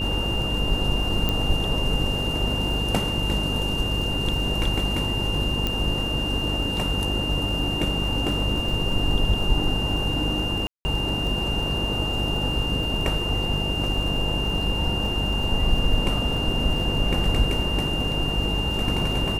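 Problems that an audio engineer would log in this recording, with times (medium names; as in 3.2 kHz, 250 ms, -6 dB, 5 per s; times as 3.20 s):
buzz 50 Hz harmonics 10 -29 dBFS
crackle 56 per s -32 dBFS
whine 2.8 kHz -27 dBFS
1.29 s: pop -10 dBFS
5.67 s: pop -11 dBFS
10.67–10.85 s: dropout 180 ms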